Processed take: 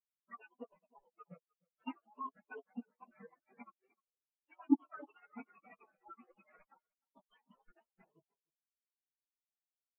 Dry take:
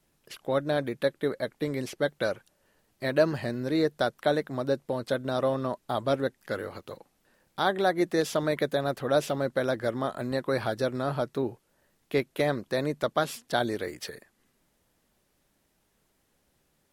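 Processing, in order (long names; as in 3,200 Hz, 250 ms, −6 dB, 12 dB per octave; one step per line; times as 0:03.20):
pitch shift by two crossfaded delay taps +9 semitones
noise gate −57 dBFS, range −18 dB
gate on every frequency bin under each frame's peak −15 dB weak
noise reduction from a noise print of the clip's start 22 dB
low-shelf EQ 60 Hz +5.5 dB
in parallel at +0.5 dB: brickwall limiter −27 dBFS, peak gain reduction 7 dB
on the sum: wave folding −19.5 dBFS
flanger 0.72 Hz, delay 6.1 ms, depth 2.9 ms, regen +58%
time stretch by phase vocoder 0.59×
high-frequency loss of the air 450 metres
on a send: single-tap delay 304 ms −7.5 dB
on the sum: every bin expanded away from the loudest bin 4 to 1
level +14 dB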